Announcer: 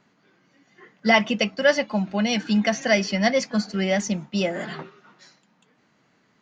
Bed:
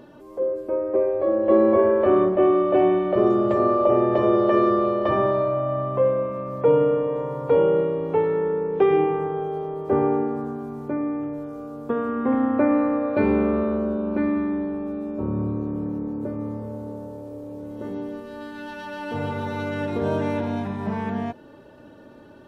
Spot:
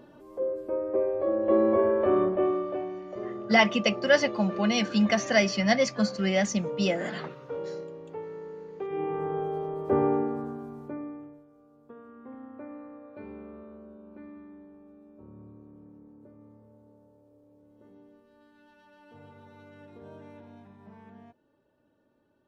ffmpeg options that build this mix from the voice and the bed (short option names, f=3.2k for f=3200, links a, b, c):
-filter_complex "[0:a]adelay=2450,volume=-2.5dB[a];[1:a]volume=8.5dB,afade=t=out:st=2.27:d=0.59:silence=0.251189,afade=t=in:st=8.89:d=0.46:silence=0.199526,afade=t=out:st=10.13:d=1.31:silence=0.1[b];[a][b]amix=inputs=2:normalize=0"